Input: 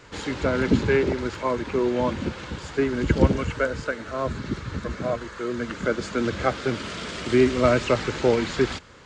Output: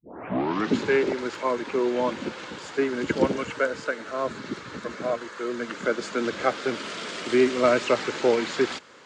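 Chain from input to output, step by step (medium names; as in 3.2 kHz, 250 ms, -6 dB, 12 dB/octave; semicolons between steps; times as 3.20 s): tape start-up on the opening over 0.76 s; high-pass 270 Hz 12 dB/octave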